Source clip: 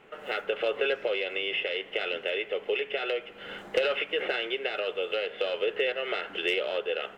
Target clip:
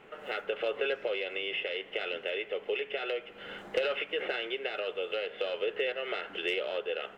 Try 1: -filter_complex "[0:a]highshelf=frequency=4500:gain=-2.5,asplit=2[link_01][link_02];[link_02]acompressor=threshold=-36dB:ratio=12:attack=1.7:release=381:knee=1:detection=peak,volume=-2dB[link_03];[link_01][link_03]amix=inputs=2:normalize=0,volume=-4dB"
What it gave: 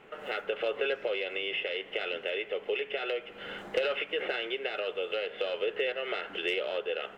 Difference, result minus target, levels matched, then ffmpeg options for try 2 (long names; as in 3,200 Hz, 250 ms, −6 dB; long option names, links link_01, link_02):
downward compressor: peak gain reduction −9.5 dB
-filter_complex "[0:a]highshelf=frequency=4500:gain=-2.5,asplit=2[link_01][link_02];[link_02]acompressor=threshold=-46.5dB:ratio=12:attack=1.7:release=381:knee=1:detection=peak,volume=-2dB[link_03];[link_01][link_03]amix=inputs=2:normalize=0,volume=-4dB"